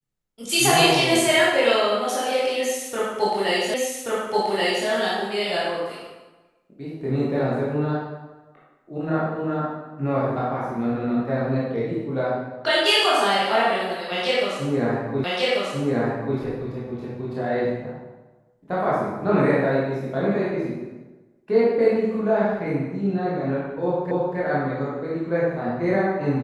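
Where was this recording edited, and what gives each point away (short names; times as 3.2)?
3.74 repeat of the last 1.13 s
15.24 repeat of the last 1.14 s
24.11 repeat of the last 0.27 s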